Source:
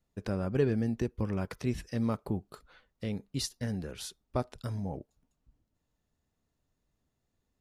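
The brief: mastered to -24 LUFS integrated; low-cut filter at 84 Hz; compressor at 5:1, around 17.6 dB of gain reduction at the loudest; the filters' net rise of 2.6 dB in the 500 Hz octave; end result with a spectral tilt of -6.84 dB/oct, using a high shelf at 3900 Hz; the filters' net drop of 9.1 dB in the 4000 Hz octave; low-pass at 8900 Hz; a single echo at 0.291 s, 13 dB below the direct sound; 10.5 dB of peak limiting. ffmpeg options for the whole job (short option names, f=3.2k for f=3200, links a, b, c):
-af "highpass=84,lowpass=8.9k,equalizer=f=500:t=o:g=3.5,highshelf=f=3.9k:g=-7,equalizer=f=4k:t=o:g=-6.5,acompressor=threshold=-40dB:ratio=5,alimiter=level_in=12dB:limit=-24dB:level=0:latency=1,volume=-12dB,aecho=1:1:291:0.224,volume=24.5dB"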